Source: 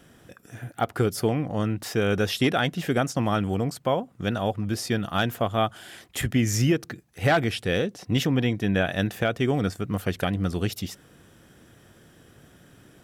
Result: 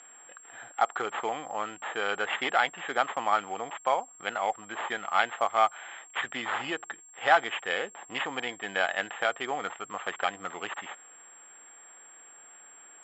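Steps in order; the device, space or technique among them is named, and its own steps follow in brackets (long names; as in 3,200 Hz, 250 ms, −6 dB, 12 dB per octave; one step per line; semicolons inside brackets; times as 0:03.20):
toy sound module (linearly interpolated sample-rate reduction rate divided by 8×; switching amplifier with a slow clock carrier 7,500 Hz; loudspeaker in its box 780–4,800 Hz, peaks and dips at 830 Hz +8 dB, 1,200 Hz +6 dB, 1,800 Hz +4 dB, 3,200 Hz +9 dB)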